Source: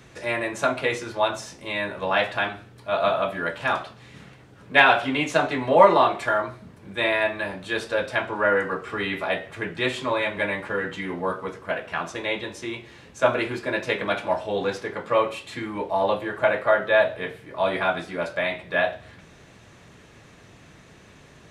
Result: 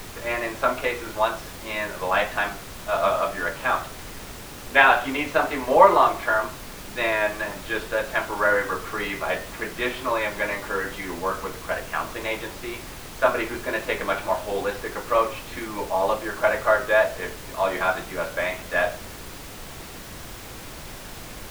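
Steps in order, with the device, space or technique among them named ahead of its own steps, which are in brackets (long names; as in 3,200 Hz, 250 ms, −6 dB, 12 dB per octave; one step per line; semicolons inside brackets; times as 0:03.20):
horn gramophone (band-pass filter 240–3,300 Hz; parametric band 1,200 Hz +4 dB; tape wow and flutter; pink noise bed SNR 13 dB)
level −1 dB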